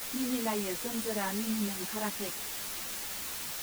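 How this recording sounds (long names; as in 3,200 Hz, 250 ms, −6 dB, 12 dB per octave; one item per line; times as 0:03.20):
a quantiser's noise floor 6 bits, dither triangular
a shimmering, thickened sound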